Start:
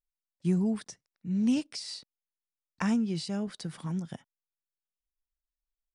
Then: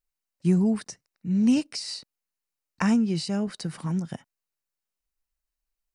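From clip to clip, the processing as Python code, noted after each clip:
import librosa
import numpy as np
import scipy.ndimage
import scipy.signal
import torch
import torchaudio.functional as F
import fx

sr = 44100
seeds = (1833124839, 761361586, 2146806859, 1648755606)

y = fx.notch(x, sr, hz=3400.0, q=7.6)
y = y * librosa.db_to_amplitude(5.5)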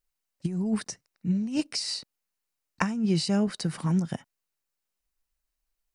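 y = fx.over_compress(x, sr, threshold_db=-24.0, ratio=-0.5)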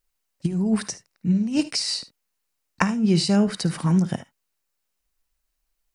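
y = fx.room_early_taps(x, sr, ms=(54, 75), db=(-17.0, -17.5))
y = y * librosa.db_to_amplitude(5.5)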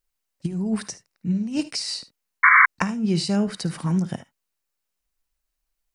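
y = fx.spec_paint(x, sr, seeds[0], shape='noise', start_s=2.43, length_s=0.23, low_hz=1000.0, high_hz=2300.0, level_db=-10.0)
y = y * librosa.db_to_amplitude(-3.0)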